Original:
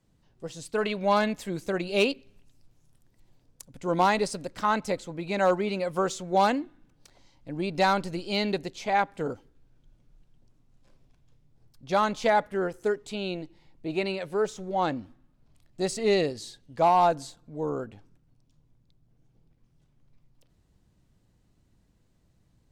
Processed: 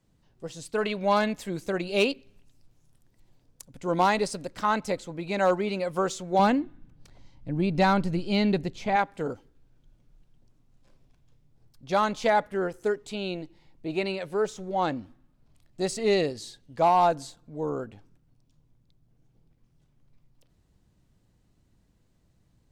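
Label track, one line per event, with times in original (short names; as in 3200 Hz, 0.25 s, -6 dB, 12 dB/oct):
6.390000	8.960000	tone controls bass +10 dB, treble -5 dB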